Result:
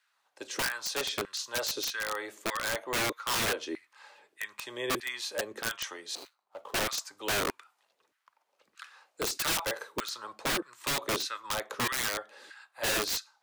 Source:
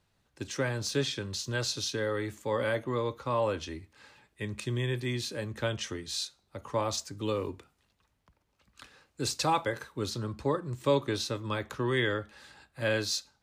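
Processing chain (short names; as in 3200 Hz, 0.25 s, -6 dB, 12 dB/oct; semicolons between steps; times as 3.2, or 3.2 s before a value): 6.15–6.79 median filter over 25 samples; LFO high-pass saw down 1.6 Hz 330–1700 Hz; wrapped overs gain 24 dB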